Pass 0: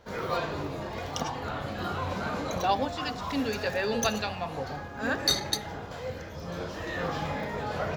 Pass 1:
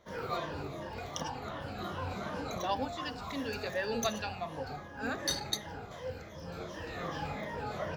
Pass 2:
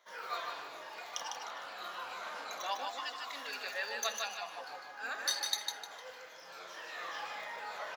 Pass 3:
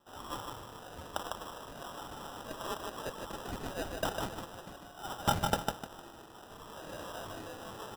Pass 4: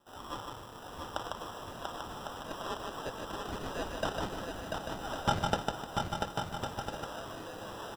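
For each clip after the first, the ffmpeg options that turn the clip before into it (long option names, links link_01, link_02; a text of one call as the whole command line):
ffmpeg -i in.wav -af "afftfilt=real='re*pow(10,9/40*sin(2*PI*(1.2*log(max(b,1)*sr/1024/100)/log(2)-(-2.7)*(pts-256)/sr)))':imag='im*pow(10,9/40*sin(2*PI*(1.2*log(max(b,1)*sr/1024/100)/log(2)-(-2.7)*(pts-256)/sr)))':win_size=1024:overlap=0.75,volume=-7dB" out.wav
ffmpeg -i in.wav -filter_complex "[0:a]highpass=980,asplit=2[link_01][link_02];[link_02]aecho=0:1:152|304|456|608:0.596|0.185|0.0572|0.0177[link_03];[link_01][link_03]amix=inputs=2:normalize=0" out.wav
ffmpeg -i in.wav -af "tiltshelf=frequency=1200:gain=-9.5,afreqshift=-170,acrusher=samples=20:mix=1:aa=0.000001,volume=-3.5dB" out.wav
ffmpeg -i in.wav -filter_complex "[0:a]asplit=2[link_01][link_02];[link_02]aecho=0:1:690|1104|1352|1501|1591:0.631|0.398|0.251|0.158|0.1[link_03];[link_01][link_03]amix=inputs=2:normalize=0,acrossover=split=6900[link_04][link_05];[link_05]acompressor=threshold=-54dB:ratio=4:attack=1:release=60[link_06];[link_04][link_06]amix=inputs=2:normalize=0" out.wav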